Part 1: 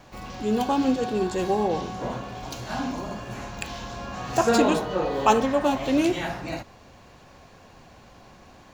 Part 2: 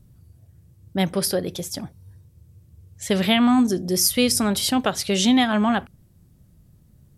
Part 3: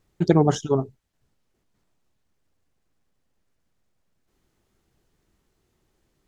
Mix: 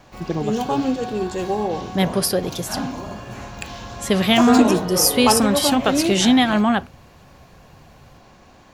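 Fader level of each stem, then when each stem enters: +1.0, +2.5, -7.5 dB; 0.00, 1.00, 0.00 s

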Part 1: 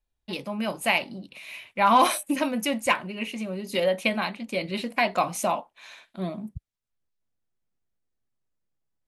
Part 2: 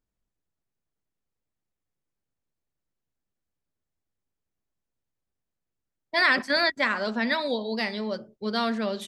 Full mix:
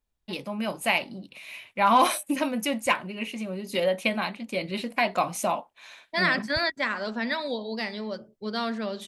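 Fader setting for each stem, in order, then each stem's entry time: -1.0, -3.0 dB; 0.00, 0.00 s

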